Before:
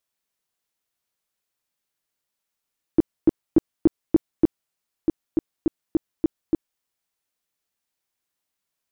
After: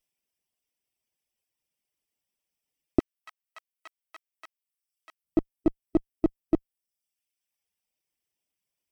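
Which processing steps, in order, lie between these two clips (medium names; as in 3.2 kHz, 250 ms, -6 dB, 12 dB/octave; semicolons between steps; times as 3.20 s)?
comb filter that takes the minimum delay 0.37 ms; 2.99–5.24 s: high-pass 1.4 kHz 24 dB/octave; reverb removal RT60 0.96 s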